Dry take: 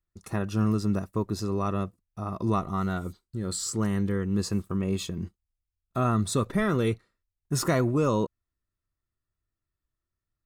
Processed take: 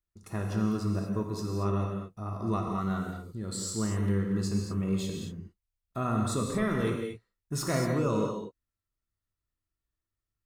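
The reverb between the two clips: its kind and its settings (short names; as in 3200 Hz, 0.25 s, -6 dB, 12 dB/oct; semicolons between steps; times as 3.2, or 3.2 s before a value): non-linear reverb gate 0.26 s flat, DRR 0.5 dB; gain -6 dB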